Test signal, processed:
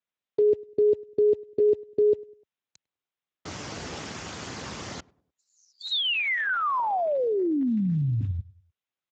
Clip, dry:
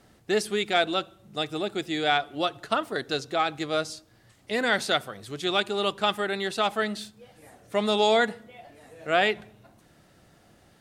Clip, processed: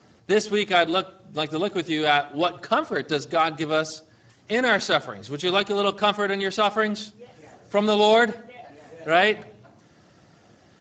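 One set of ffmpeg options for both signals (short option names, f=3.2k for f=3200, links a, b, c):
-filter_complex "[0:a]asplit=2[a][b];[b]adelay=100,lowpass=f=1.1k:p=1,volume=-22dB,asplit=2[c][d];[d]adelay=100,lowpass=f=1.1k:p=1,volume=0.41,asplit=2[e][f];[f]adelay=100,lowpass=f=1.1k:p=1,volume=0.41[g];[c][e][g]amix=inputs=3:normalize=0[h];[a][h]amix=inputs=2:normalize=0,volume=4dB" -ar 16000 -c:a libspeex -b:a 13k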